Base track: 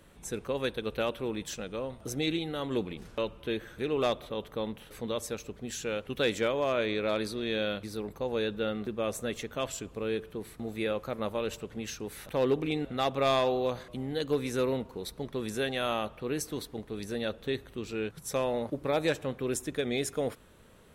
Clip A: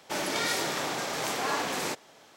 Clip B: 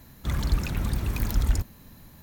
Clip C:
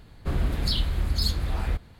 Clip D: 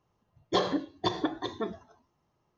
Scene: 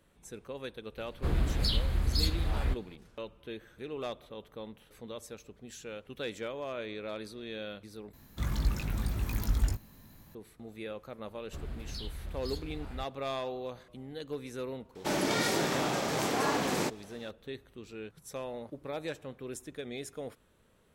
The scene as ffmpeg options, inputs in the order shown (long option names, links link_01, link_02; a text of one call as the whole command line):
ffmpeg -i bed.wav -i cue0.wav -i cue1.wav -i cue2.wav -filter_complex "[3:a]asplit=2[link_01][link_02];[0:a]volume=-9.5dB[link_03];[2:a]asplit=2[link_04][link_05];[link_05]adelay=19,volume=-6dB[link_06];[link_04][link_06]amix=inputs=2:normalize=0[link_07];[1:a]lowshelf=frequency=440:gain=11.5[link_08];[link_03]asplit=2[link_09][link_10];[link_09]atrim=end=8.134[link_11];[link_07]atrim=end=2.22,asetpts=PTS-STARTPTS,volume=-6.5dB[link_12];[link_10]atrim=start=10.346[link_13];[link_01]atrim=end=1.99,asetpts=PTS-STARTPTS,volume=-3.5dB,afade=type=in:duration=0.004:curve=hsin,afade=type=out:start_time=1.986:duration=0.004:curve=hsin,adelay=970[link_14];[link_02]atrim=end=1.99,asetpts=PTS-STARTPTS,volume=-15.5dB,afade=type=in:duration=0.004:curve=hsin,afade=type=out:start_time=1.986:duration=0.004:curve=hsin,adelay=11270[link_15];[link_08]atrim=end=2.36,asetpts=PTS-STARTPTS,volume=-3dB,afade=type=in:duration=0.004:curve=hsin,afade=type=out:start_time=2.356:duration=0.004:curve=hsin,adelay=14950[link_16];[link_11][link_12]acrossfade=duration=0.004:curve1=hsin:curve2=hsin[link_17];[link_17][link_13]acrossfade=duration=0.004:curve1=hsin:curve2=hsin[link_18];[link_18][link_14][link_15][link_16]amix=inputs=4:normalize=0" out.wav